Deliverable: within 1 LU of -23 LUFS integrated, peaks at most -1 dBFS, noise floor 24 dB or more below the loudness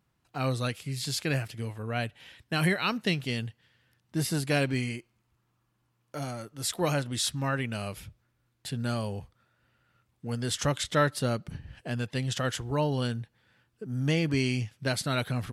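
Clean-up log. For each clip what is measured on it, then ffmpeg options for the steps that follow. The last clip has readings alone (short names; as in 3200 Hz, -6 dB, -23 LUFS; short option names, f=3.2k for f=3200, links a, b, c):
loudness -30.5 LUFS; peak -12.5 dBFS; loudness target -23.0 LUFS
-> -af "volume=7.5dB"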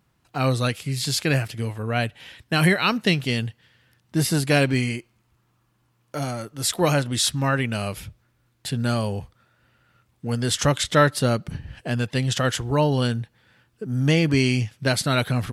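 loudness -23.0 LUFS; peak -5.0 dBFS; noise floor -67 dBFS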